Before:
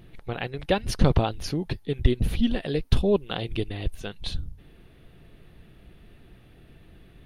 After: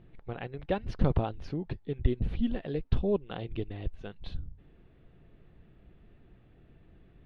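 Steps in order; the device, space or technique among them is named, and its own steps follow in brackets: phone in a pocket (low-pass 3.7 kHz 12 dB/octave; treble shelf 2.1 kHz -9 dB); trim -6 dB

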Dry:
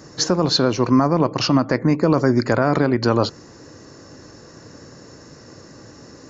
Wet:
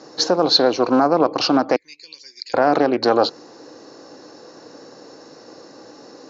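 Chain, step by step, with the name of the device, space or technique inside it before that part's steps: 1.76–2.54 s: inverse Chebyshev band-stop 110–1400 Hz, stop band 40 dB; full-range speaker at full volume (loudspeaker Doppler distortion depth 0.25 ms; cabinet simulation 290–6200 Hz, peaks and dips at 300 Hz +4 dB, 490 Hz +5 dB, 780 Hz +8 dB, 1.9 kHz -4 dB, 4.1 kHz +6 dB)

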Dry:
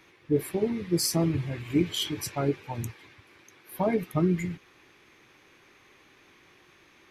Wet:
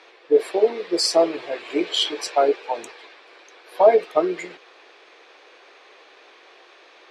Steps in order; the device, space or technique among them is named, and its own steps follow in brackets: phone speaker on a table (cabinet simulation 410–7400 Hz, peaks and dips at 480 Hz +6 dB, 680 Hz +8 dB, 2.1 kHz -4 dB, 4.2 kHz +3 dB, 6.3 kHz -7 dB); trim +9 dB

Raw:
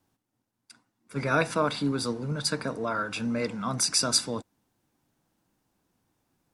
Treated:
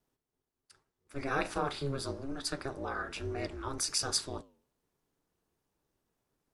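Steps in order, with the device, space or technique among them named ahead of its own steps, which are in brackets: alien voice (ring modulator 140 Hz; flange 1.2 Hz, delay 5 ms, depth 6.2 ms, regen -87%); 1.41–1.94 s: doubling 37 ms -11.5 dB

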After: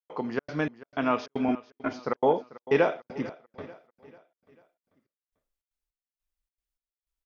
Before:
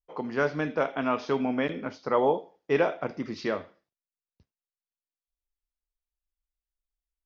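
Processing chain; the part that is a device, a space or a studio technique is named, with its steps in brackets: 1.48–1.93 s: comb 2.9 ms, depth 97%; trance gate with a delay (trance gate ".xxx.xx.." 155 bpm -60 dB; feedback delay 443 ms, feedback 45%, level -18 dB); trim +1.5 dB

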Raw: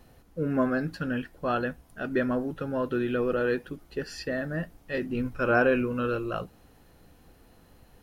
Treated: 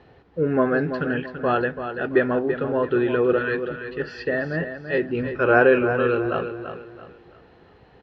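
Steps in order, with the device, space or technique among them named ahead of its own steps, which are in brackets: 3.38–4.00 s: high-order bell 530 Hz -12.5 dB; guitar cabinet (cabinet simulation 76–3900 Hz, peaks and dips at 230 Hz -5 dB, 410 Hz +8 dB, 830 Hz +4 dB, 1.8 kHz +4 dB); feedback delay 335 ms, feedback 34%, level -9 dB; trim +4.5 dB

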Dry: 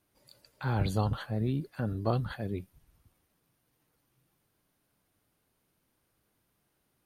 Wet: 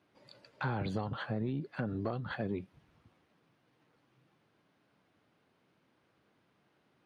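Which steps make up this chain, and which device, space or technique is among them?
AM radio (band-pass 140–3300 Hz; compression 10:1, threshold -37 dBFS, peak gain reduction 14 dB; saturation -28.5 dBFS, distortion -23 dB); trim +6.5 dB

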